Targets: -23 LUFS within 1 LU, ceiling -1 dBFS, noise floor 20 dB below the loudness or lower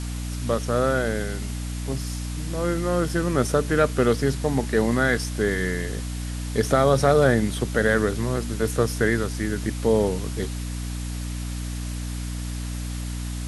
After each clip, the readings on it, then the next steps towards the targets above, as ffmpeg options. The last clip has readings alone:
hum 60 Hz; harmonics up to 300 Hz; hum level -27 dBFS; noise floor -30 dBFS; noise floor target -45 dBFS; loudness -24.5 LUFS; peak -4.5 dBFS; loudness target -23.0 LUFS
-> -af "bandreject=f=60:t=h:w=4,bandreject=f=120:t=h:w=4,bandreject=f=180:t=h:w=4,bandreject=f=240:t=h:w=4,bandreject=f=300:t=h:w=4"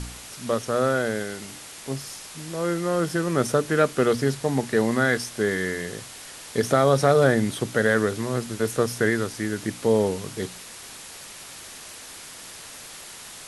hum none; noise floor -42 dBFS; noise floor target -44 dBFS
-> -af "afftdn=nr=6:nf=-42"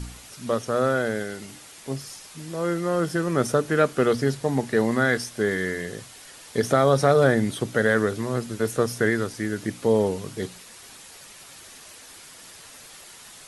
noise floor -46 dBFS; loudness -24.0 LUFS; peak -5.0 dBFS; loudness target -23.0 LUFS
-> -af "volume=1dB"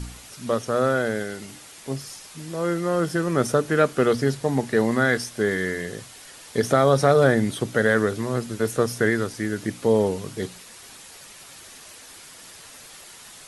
loudness -23.0 LUFS; peak -4.0 dBFS; noise floor -45 dBFS

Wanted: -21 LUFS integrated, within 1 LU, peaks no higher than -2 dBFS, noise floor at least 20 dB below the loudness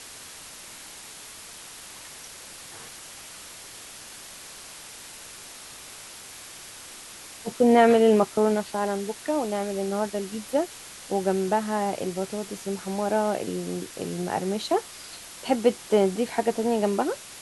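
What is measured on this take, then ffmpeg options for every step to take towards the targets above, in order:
noise floor -44 dBFS; noise floor target -46 dBFS; loudness -25.5 LUFS; peak -7.0 dBFS; loudness target -21.0 LUFS
-> -af "afftdn=nr=6:nf=-44"
-af "volume=4.5dB"

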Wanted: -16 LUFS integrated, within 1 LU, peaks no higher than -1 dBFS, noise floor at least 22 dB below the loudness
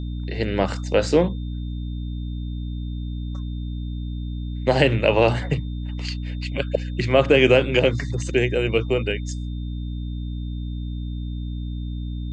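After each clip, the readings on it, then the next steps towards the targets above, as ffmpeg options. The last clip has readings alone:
hum 60 Hz; harmonics up to 300 Hz; hum level -26 dBFS; steady tone 3600 Hz; tone level -49 dBFS; loudness -23.5 LUFS; peak -3.5 dBFS; loudness target -16.0 LUFS
-> -af "bandreject=f=60:t=h:w=6,bandreject=f=120:t=h:w=6,bandreject=f=180:t=h:w=6,bandreject=f=240:t=h:w=6,bandreject=f=300:t=h:w=6"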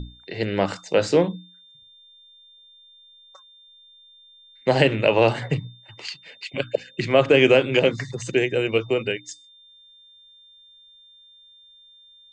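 hum none; steady tone 3600 Hz; tone level -49 dBFS
-> -af "bandreject=f=3.6k:w=30"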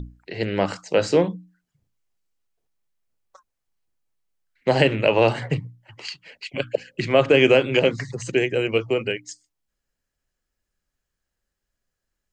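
steady tone none; loudness -21.5 LUFS; peak -3.5 dBFS; loudness target -16.0 LUFS
-> -af "volume=5.5dB,alimiter=limit=-1dB:level=0:latency=1"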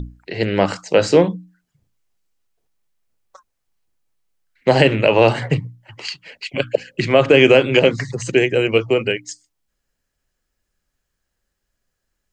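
loudness -16.5 LUFS; peak -1.0 dBFS; noise floor -77 dBFS

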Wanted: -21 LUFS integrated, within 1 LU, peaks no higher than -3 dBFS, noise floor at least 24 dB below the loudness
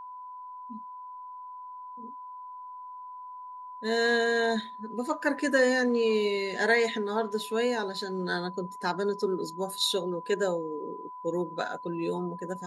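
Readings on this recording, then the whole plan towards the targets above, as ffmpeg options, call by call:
steady tone 1000 Hz; tone level -40 dBFS; loudness -28.5 LUFS; peak -11.5 dBFS; loudness target -21.0 LUFS
-> -af "bandreject=f=1k:w=30"
-af "volume=7.5dB"

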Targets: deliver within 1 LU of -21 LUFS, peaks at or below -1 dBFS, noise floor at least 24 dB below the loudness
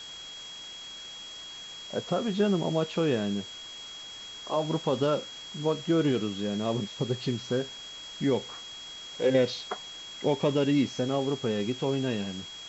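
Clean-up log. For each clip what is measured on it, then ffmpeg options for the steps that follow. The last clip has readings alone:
steady tone 3300 Hz; tone level -41 dBFS; noise floor -43 dBFS; noise floor target -54 dBFS; loudness -30.0 LUFS; peak -13.0 dBFS; loudness target -21.0 LUFS
-> -af "bandreject=f=3.3k:w=30"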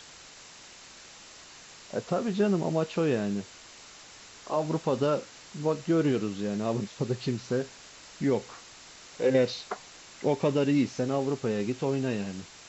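steady tone none; noise floor -50 dBFS; noise floor target -53 dBFS
-> -af "afftdn=nr=6:nf=-50"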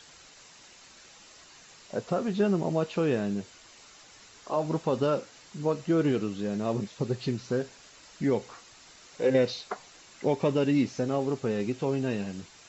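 noise floor -54 dBFS; loudness -29.0 LUFS; peak -13.5 dBFS; loudness target -21.0 LUFS
-> -af "volume=8dB"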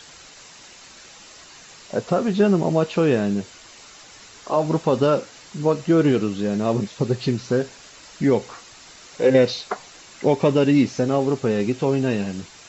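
loudness -21.0 LUFS; peak -5.5 dBFS; noise floor -46 dBFS

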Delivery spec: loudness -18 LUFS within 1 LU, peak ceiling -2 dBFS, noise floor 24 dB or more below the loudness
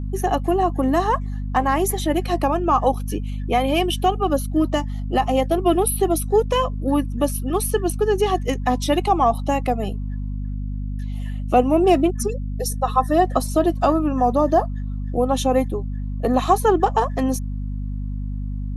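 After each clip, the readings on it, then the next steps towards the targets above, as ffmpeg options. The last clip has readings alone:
hum 50 Hz; harmonics up to 250 Hz; hum level -24 dBFS; loudness -21.0 LUFS; peak -3.0 dBFS; loudness target -18.0 LUFS
-> -af "bandreject=f=50:t=h:w=4,bandreject=f=100:t=h:w=4,bandreject=f=150:t=h:w=4,bandreject=f=200:t=h:w=4,bandreject=f=250:t=h:w=4"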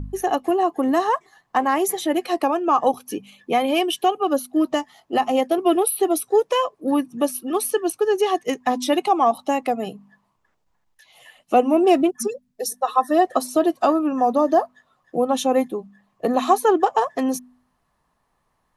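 hum none; loudness -21.0 LUFS; peak -3.5 dBFS; loudness target -18.0 LUFS
-> -af "volume=3dB,alimiter=limit=-2dB:level=0:latency=1"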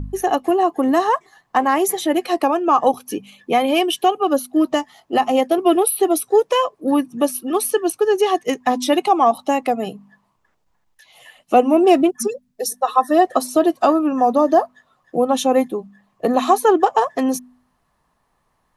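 loudness -18.0 LUFS; peak -2.0 dBFS; noise floor -67 dBFS

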